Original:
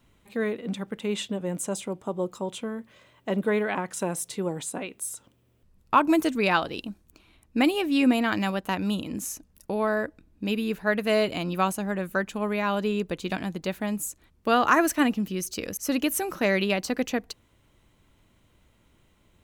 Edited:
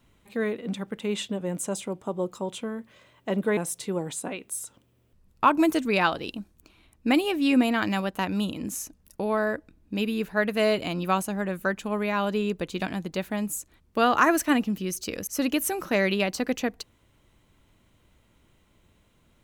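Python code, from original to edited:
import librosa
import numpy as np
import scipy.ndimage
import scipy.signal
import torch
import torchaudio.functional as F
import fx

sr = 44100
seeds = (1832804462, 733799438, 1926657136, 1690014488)

y = fx.edit(x, sr, fx.cut(start_s=3.57, length_s=0.5), tone=tone)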